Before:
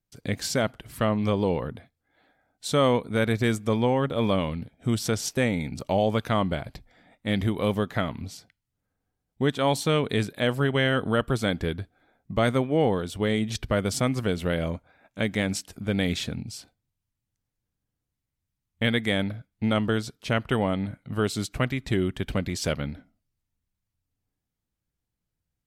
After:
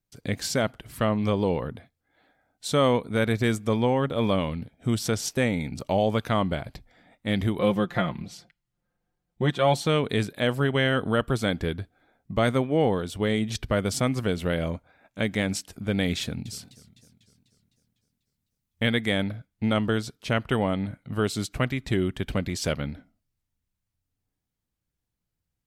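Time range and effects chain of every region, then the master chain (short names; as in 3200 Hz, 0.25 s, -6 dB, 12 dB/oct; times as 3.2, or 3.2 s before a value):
7.59–9.87 high shelf 6600 Hz -8.5 dB + comb 5.7 ms, depth 74%
16.21–18.84 high shelf 9600 Hz +6.5 dB + warbling echo 0.25 s, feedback 58%, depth 197 cents, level -18 dB
whole clip: dry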